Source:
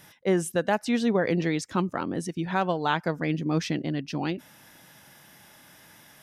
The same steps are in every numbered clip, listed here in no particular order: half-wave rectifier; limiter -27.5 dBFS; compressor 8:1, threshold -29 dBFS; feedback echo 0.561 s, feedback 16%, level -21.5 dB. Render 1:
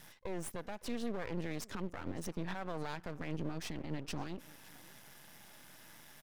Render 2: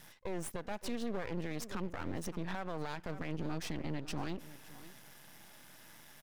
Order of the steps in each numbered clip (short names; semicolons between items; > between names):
compressor > limiter > feedback echo > half-wave rectifier; half-wave rectifier > feedback echo > compressor > limiter